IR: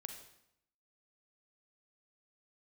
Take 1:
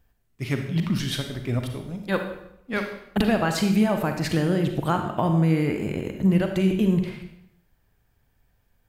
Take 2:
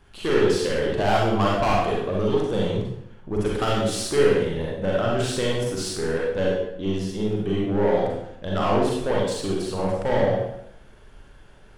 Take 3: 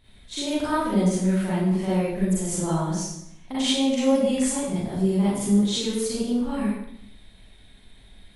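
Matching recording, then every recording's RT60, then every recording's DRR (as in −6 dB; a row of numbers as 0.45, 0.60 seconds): 1; 0.75, 0.75, 0.75 seconds; 5.0, −4.0, −10.5 decibels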